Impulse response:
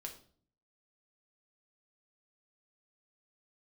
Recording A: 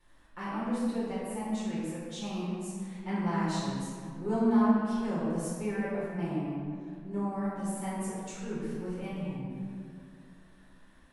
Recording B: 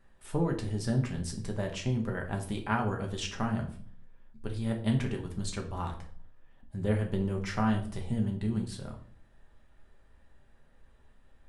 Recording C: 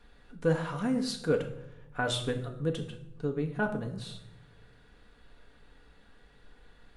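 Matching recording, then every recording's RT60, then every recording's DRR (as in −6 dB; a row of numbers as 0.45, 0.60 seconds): B; 2.3, 0.50, 0.90 seconds; −9.5, 1.5, 2.0 decibels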